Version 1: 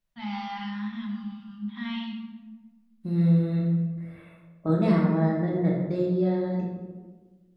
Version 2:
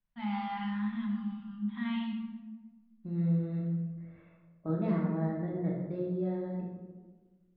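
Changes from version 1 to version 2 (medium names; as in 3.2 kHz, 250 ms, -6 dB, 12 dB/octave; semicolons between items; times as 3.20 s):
second voice -8.0 dB; master: add distance through air 360 m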